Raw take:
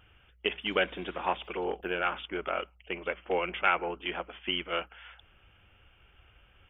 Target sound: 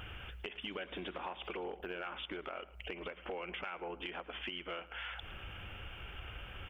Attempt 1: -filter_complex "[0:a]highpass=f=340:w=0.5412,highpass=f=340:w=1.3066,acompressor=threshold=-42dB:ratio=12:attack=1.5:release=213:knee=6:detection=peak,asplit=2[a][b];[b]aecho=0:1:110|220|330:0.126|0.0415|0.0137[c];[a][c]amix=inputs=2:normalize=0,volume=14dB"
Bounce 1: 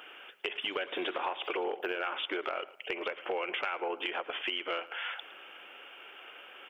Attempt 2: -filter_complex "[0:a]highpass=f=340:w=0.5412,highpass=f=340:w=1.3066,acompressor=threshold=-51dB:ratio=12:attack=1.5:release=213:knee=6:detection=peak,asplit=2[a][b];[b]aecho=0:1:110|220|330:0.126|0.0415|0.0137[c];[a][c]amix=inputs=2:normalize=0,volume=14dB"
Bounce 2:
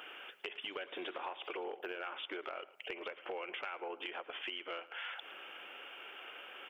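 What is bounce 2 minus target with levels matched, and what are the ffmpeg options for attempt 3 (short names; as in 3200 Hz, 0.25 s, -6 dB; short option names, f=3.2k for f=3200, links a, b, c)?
250 Hz band -3.5 dB
-filter_complex "[0:a]acompressor=threshold=-51dB:ratio=12:attack=1.5:release=213:knee=6:detection=peak,asplit=2[a][b];[b]aecho=0:1:110|220|330:0.126|0.0415|0.0137[c];[a][c]amix=inputs=2:normalize=0,volume=14dB"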